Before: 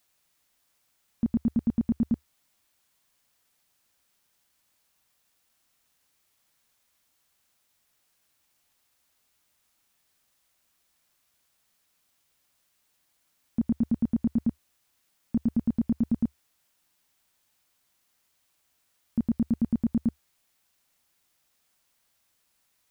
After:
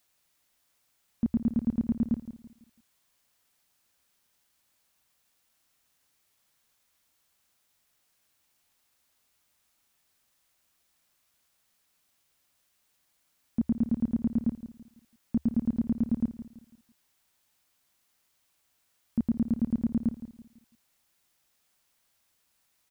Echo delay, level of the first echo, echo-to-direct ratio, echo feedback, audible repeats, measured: 166 ms, −13.0 dB, −12.5 dB, 36%, 3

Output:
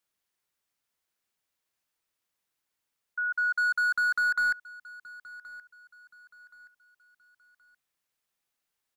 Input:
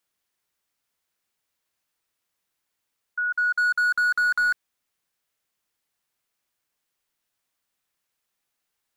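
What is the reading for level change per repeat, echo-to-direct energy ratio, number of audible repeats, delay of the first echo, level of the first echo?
−9.0 dB, −19.5 dB, 2, 1,074 ms, −20.0 dB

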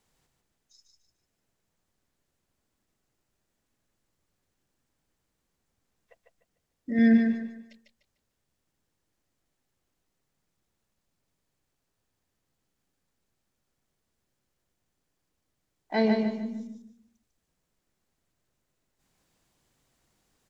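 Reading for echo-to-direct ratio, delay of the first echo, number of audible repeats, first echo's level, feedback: −4.0 dB, 149 ms, 4, −4.5 dB, 33%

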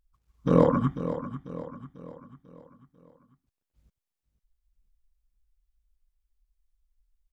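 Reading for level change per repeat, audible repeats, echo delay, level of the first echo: −6.5 dB, 4, 494 ms, −11.5 dB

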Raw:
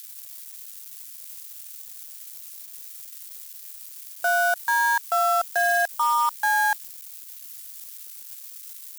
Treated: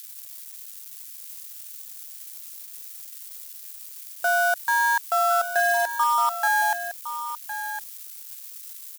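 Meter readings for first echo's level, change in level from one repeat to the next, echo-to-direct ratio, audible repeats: −10.5 dB, repeats not evenly spaced, −10.5 dB, 1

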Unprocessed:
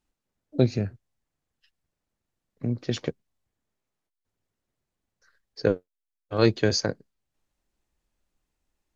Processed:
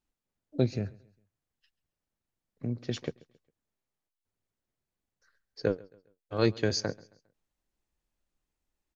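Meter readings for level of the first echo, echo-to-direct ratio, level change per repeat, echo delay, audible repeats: −23.0 dB, −22.5 dB, −8.5 dB, 135 ms, 2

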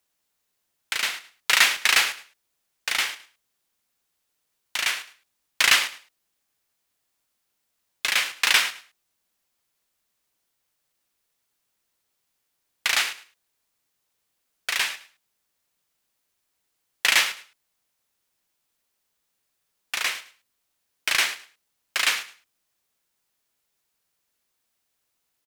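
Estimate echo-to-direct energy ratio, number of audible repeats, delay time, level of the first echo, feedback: −16.5 dB, 2, 106 ms, −16.5 dB, 22%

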